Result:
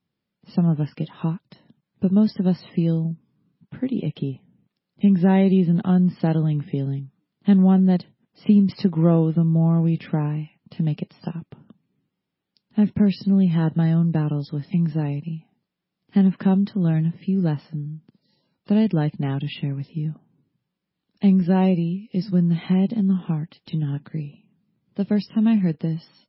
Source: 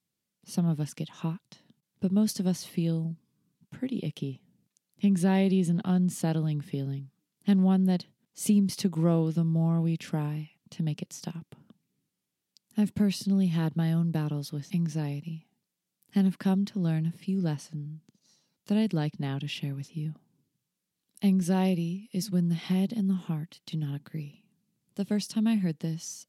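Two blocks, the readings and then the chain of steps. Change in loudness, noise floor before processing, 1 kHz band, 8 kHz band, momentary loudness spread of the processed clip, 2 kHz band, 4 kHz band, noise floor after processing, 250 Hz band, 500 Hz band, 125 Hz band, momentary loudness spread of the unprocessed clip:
+7.5 dB, -85 dBFS, +6.5 dB, under -35 dB, 13 LU, +4.0 dB, 0.0 dB, -82 dBFS, +7.5 dB, +7.0 dB, +7.5 dB, 13 LU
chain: low-pass 1.7 kHz 6 dB/octave; trim +8 dB; MP3 16 kbps 16 kHz

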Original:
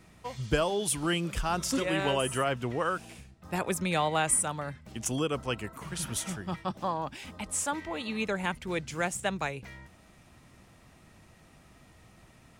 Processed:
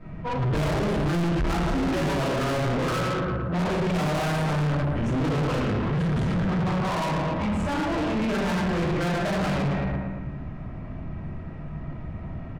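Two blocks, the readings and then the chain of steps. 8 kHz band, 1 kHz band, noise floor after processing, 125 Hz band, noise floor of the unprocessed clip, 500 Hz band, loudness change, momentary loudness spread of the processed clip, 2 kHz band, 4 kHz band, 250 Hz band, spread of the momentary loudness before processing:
-11.0 dB, +4.0 dB, -36 dBFS, +12.5 dB, -58 dBFS, +5.0 dB, +5.0 dB, 12 LU, +3.0 dB, +1.0 dB, +9.5 dB, 11 LU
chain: in parallel at -5 dB: bit crusher 6-bit; on the sum: low-pass 1.6 kHz 12 dB/octave; on a send: feedback delay 114 ms, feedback 53%, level -8.5 dB; on the sum: simulated room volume 310 m³, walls mixed, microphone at 5.5 m; saturation -27 dBFS, distortion -2 dB; bass shelf 440 Hz +5.5 dB

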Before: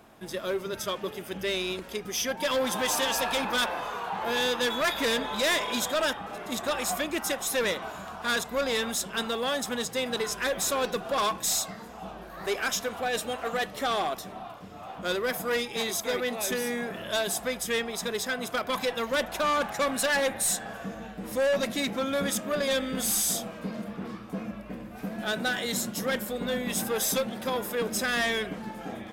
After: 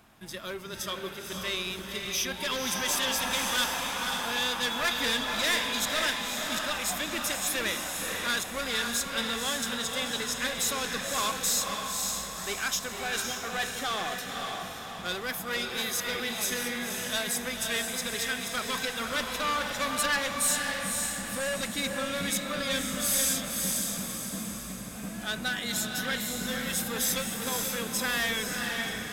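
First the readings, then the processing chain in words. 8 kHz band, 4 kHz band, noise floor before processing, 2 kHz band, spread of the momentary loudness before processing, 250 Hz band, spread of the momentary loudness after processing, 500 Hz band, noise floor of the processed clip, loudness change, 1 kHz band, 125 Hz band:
+2.0 dB, +2.0 dB, -43 dBFS, +0.5 dB, 11 LU, -2.5 dB, 8 LU, -7.0 dB, -40 dBFS, -0.5 dB, -2.5 dB, -0.5 dB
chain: peaking EQ 480 Hz -10 dB 1.9 oct; echo that smears into a reverb 534 ms, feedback 48%, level -3 dB

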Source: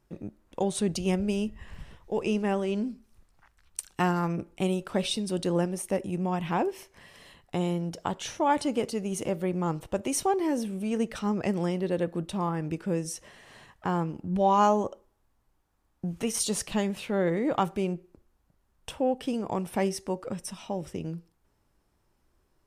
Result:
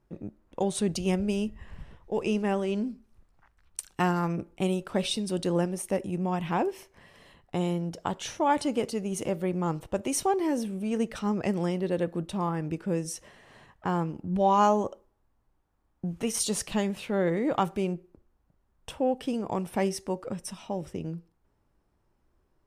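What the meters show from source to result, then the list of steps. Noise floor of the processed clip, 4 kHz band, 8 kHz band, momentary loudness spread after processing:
-71 dBFS, 0.0 dB, 0.0 dB, 11 LU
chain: tape noise reduction on one side only decoder only

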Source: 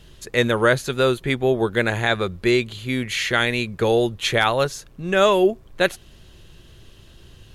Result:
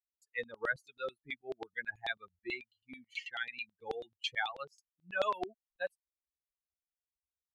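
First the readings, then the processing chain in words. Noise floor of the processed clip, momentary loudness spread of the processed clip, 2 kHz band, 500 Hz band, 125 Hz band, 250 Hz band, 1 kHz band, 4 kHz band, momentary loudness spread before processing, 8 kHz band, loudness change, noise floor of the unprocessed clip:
under -85 dBFS, 9 LU, -15.0 dB, -22.5 dB, -35.5 dB, -28.5 dB, -16.5 dB, -18.5 dB, 6 LU, -28.0 dB, -19.0 dB, -49 dBFS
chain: expander on every frequency bin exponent 3; LFO band-pass saw down 9.2 Hz 570–3800 Hz; trim -4 dB

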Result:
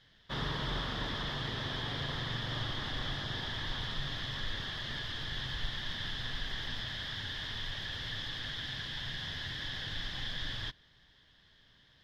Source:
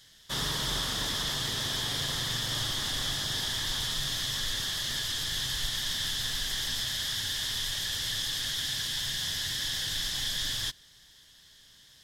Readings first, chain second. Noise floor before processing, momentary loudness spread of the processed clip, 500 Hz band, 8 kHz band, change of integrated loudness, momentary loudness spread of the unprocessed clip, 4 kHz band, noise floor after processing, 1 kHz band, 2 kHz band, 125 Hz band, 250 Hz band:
-57 dBFS, 2 LU, -1.0 dB, -23.0 dB, -7.5 dB, 1 LU, -8.5 dB, -64 dBFS, -1.5 dB, -3.0 dB, 0.0 dB, -0.5 dB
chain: distance through air 330 m

